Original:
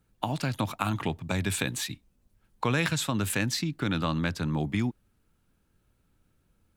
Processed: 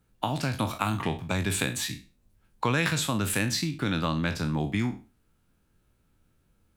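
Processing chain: spectral trails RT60 0.33 s

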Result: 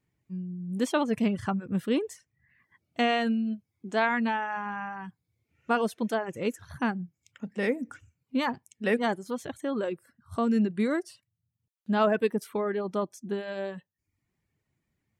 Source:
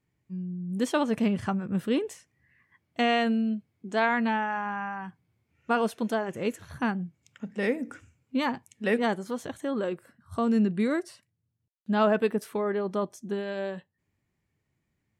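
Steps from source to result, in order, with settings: reverb removal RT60 0.54 s

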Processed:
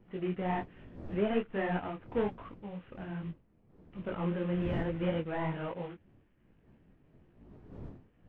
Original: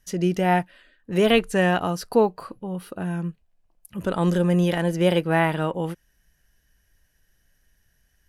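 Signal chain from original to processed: CVSD 16 kbps; wind noise 240 Hz -37 dBFS; detuned doubles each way 42 cents; gain -7.5 dB

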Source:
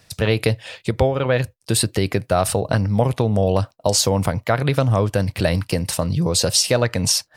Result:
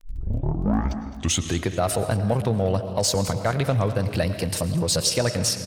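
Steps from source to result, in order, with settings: tape start at the beginning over 2.26 s; crackle 13/s -35 dBFS; feedback echo 0.276 s, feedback 39%, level -15.5 dB; reverb RT60 1.8 s, pre-delay 95 ms, DRR 11 dB; tempo 1.3×; in parallel at -4.5 dB: soft clip -17 dBFS, distortion -10 dB; on the sum: gain -7 dB

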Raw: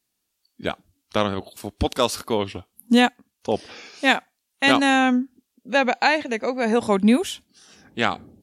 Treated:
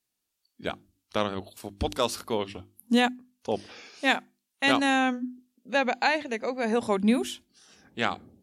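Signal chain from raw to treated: notches 50/100/150/200/250/300/350 Hz; gain -5.5 dB

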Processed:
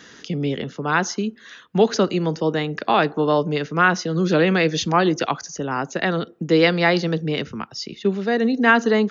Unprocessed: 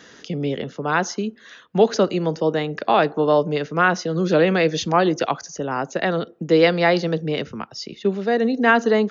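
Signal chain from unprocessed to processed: bell 590 Hz -5.5 dB 0.96 oct; gain +2 dB

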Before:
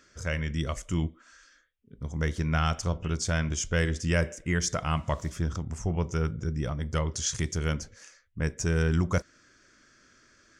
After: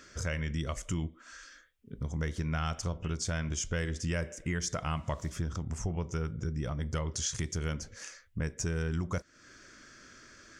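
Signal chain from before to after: compressor 3:1, threshold -40 dBFS, peak gain reduction 14.5 dB; gain +6 dB

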